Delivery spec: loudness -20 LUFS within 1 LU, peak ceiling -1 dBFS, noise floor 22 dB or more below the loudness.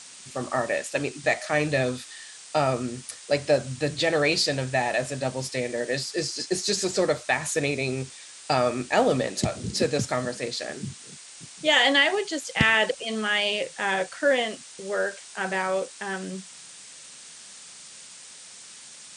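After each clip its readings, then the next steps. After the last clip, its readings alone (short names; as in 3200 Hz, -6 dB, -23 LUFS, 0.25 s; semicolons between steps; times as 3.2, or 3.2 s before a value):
noise floor -46 dBFS; noise floor target -48 dBFS; loudness -25.5 LUFS; peak -7.5 dBFS; loudness target -20.0 LUFS
-> noise print and reduce 6 dB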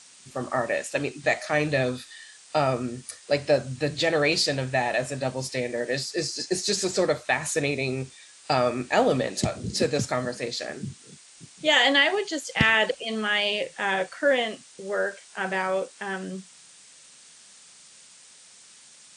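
noise floor -52 dBFS; loudness -25.5 LUFS; peak -7.5 dBFS; loudness target -20.0 LUFS
-> gain +5.5 dB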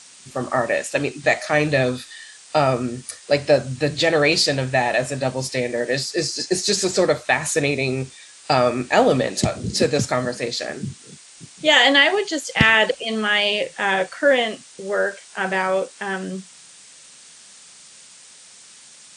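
loudness -20.0 LUFS; peak -2.0 dBFS; noise floor -46 dBFS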